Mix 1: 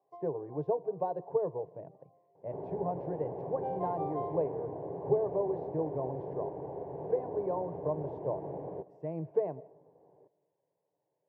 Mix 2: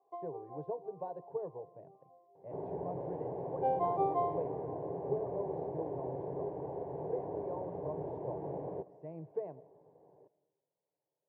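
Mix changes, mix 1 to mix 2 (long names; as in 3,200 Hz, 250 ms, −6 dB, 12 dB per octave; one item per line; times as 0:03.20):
speech −8.5 dB
first sound +5.5 dB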